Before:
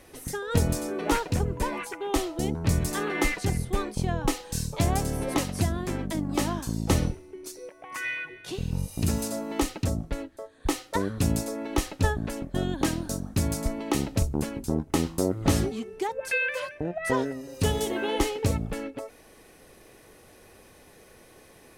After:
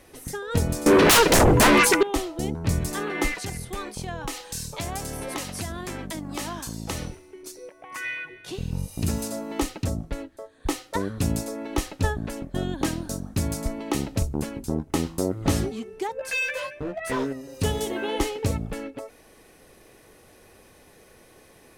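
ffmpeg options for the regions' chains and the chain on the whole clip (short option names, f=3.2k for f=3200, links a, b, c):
-filter_complex "[0:a]asettb=1/sr,asplit=3[a][b][c];[a]atrim=end=0.864[d];[b]atrim=start=0.86:end=2.03,asetpts=PTS-STARTPTS,afade=t=in:d=0.004:c=qsin,afade=t=out:st=1.166:d=0.004:c=qsin,equalizer=f=750:w=3.1:g=-12,aeval=exprs='0.251*sin(PI/2*7.94*val(0)/0.251)':c=same[e];[c]atrim=start=2.026[f];[d][e]acrossfade=d=0.004:c1=hsin:c2=qsin[g];[g][f]acrossfade=d=0.004:c1=qsin:c2=hsin,asettb=1/sr,asplit=3[h][i][j];[h]atrim=end=3.354[k];[i]atrim=start=3.35:end=7.43,asetpts=PTS-STARTPTS,afade=t=in:d=0.004:c=qsin,afade=t=out:st=4.076:d=0.004:c=qsin,tiltshelf=f=630:g=-4.5,acompressor=threshold=-29dB:ratio=2.5:attack=3.2:release=140:knee=1:detection=peak[l];[j]atrim=start=7.426[m];[k][l]acrossfade=d=0.004:c1=hsin:c2=qsin[n];[n][m]acrossfade=d=0.004:c1=qsin:c2=hsin,asettb=1/sr,asplit=3[o][p][q];[o]atrim=end=16.194[r];[p]atrim=start=16.19:end=17.33,asetpts=PTS-STARTPTS,afade=t=in:d=0.004:c=qsin,afade=t=out:st=1.136:d=0.004:c=qsin,asoftclip=type=hard:threshold=-25.5dB,asplit=2[s][t];[t]adelay=15,volume=-3dB[u];[s][u]amix=inputs=2:normalize=0,atrim=end_sample=50274[v];[q]atrim=start=17.326[w];[r][v]acrossfade=d=0.004:c1=hsin:c2=qsin[x];[x][w]acrossfade=d=0.004:c1=qsin:c2=hsin"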